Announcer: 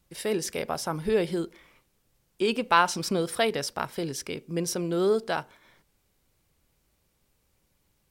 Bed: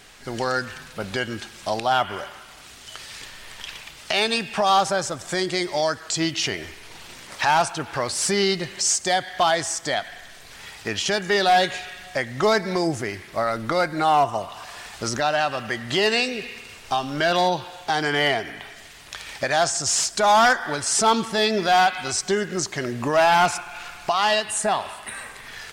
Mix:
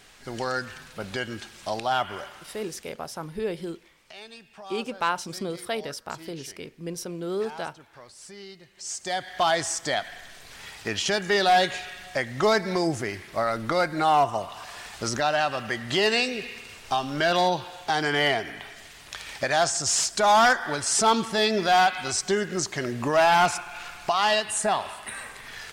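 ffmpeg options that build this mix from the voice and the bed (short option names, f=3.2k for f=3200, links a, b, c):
-filter_complex "[0:a]adelay=2300,volume=-5dB[a];[1:a]volume=16dB,afade=t=out:st=2.56:d=0.4:silence=0.125893,afade=t=in:st=8.74:d=0.82:silence=0.0944061[b];[a][b]amix=inputs=2:normalize=0"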